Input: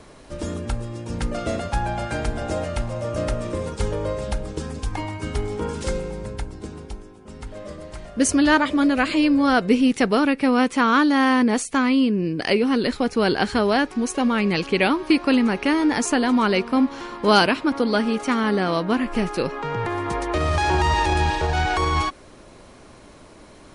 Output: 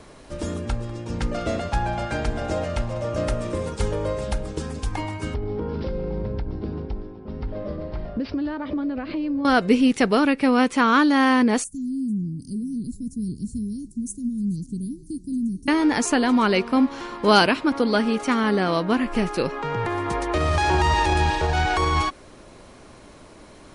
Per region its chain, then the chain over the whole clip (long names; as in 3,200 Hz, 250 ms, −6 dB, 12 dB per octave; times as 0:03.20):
0:00.68–0:03.24: low-pass filter 7,300 Hz + single-tap delay 195 ms −18.5 dB
0:05.34–0:09.45: downward compressor 10 to 1, threshold −29 dBFS + tilt shelving filter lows +7.5 dB, about 1,200 Hz + bad sample-rate conversion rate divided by 4×, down none, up filtered
0:11.64–0:15.68: inverse Chebyshev band-stop filter 710–2,500 Hz, stop band 70 dB + single-tap delay 441 ms −21.5 dB
whole clip: no processing